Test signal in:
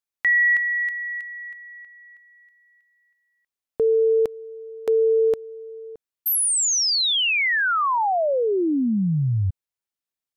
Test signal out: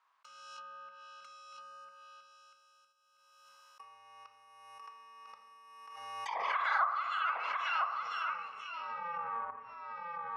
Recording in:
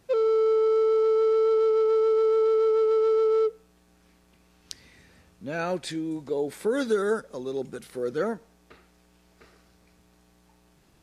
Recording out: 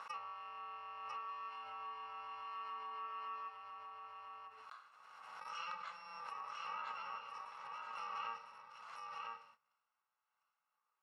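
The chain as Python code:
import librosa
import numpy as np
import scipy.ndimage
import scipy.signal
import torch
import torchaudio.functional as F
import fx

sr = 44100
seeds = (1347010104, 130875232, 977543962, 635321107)

y = fx.bit_reversed(x, sr, seeds[0], block=128)
y = fx.over_compress(y, sr, threshold_db=-23.0, ratio=-0.5)
y = fx.peak_eq(y, sr, hz=1100.0, db=6.0, octaves=0.6)
y = fx.room_shoebox(y, sr, seeds[1], volume_m3=310.0, walls='mixed', distance_m=0.63)
y = fx.env_lowpass_down(y, sr, base_hz=1400.0, full_db=-17.5)
y = y + 10.0 ** (-3.5 / 20.0) * np.pad(y, (int(1000 * sr / 1000.0), 0))[:len(y)]
y = fx.gate_hold(y, sr, open_db=-34.0, close_db=-44.0, hold_ms=55.0, range_db=-16, attack_ms=6.3, release_ms=43.0)
y = fx.env_lowpass_down(y, sr, base_hz=1500.0, full_db=-19.0)
y = 10.0 ** (-16.5 / 20.0) * np.tanh(y / 10.0 ** (-16.5 / 20.0))
y = fx.ladder_bandpass(y, sr, hz=1200.0, resonance_pct=55)
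y = fx.pre_swell(y, sr, db_per_s=30.0)
y = F.gain(torch.from_numpy(y), 3.0).numpy()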